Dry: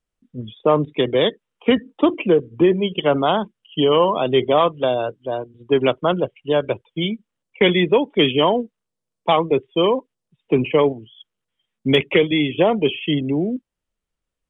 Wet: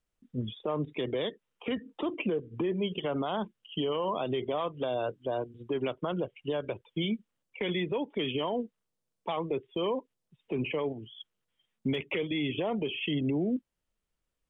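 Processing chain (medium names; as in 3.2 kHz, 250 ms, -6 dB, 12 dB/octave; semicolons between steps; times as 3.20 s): compression, threshold -22 dBFS, peak gain reduction 11.5 dB; peak limiter -20.5 dBFS, peak gain reduction 9 dB; trim -2 dB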